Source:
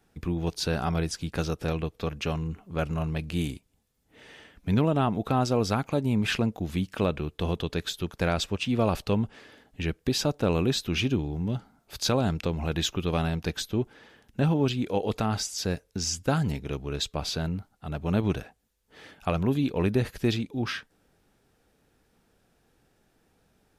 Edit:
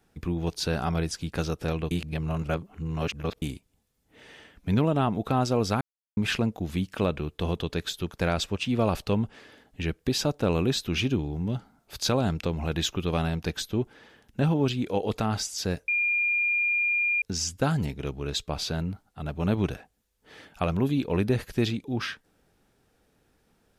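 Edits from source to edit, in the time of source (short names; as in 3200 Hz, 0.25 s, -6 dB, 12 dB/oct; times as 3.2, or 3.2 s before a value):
1.91–3.42 reverse
5.81–6.17 mute
15.88 add tone 2410 Hz -22 dBFS 1.34 s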